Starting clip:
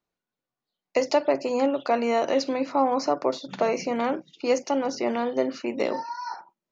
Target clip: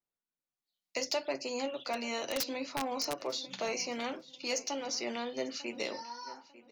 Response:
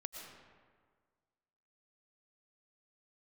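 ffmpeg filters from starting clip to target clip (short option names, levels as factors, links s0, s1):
-filter_complex "[0:a]acrossover=split=510|2600[s0][s1][s2];[s2]dynaudnorm=f=140:g=9:m=6.31[s3];[s0][s1][s3]amix=inputs=3:normalize=0,asoftclip=type=tanh:threshold=0.355,flanger=delay=8.1:depth=1.5:regen=-53:speed=0.74:shape=sinusoidal,asplit=3[s4][s5][s6];[s4]afade=t=out:st=1.93:d=0.02[s7];[s5]aeval=exprs='(mod(7.08*val(0)+1,2)-1)/7.08':c=same,afade=t=in:st=1.93:d=0.02,afade=t=out:st=3.21:d=0.02[s8];[s6]afade=t=in:st=3.21:d=0.02[s9];[s7][s8][s9]amix=inputs=3:normalize=0,asplit=2[s10][s11];[s11]adelay=897,lowpass=f=3500:p=1,volume=0.133,asplit=2[s12][s13];[s13]adelay=897,lowpass=f=3500:p=1,volume=0.32,asplit=2[s14][s15];[s15]adelay=897,lowpass=f=3500:p=1,volume=0.32[s16];[s10][s12][s14][s16]amix=inputs=4:normalize=0,volume=0.376"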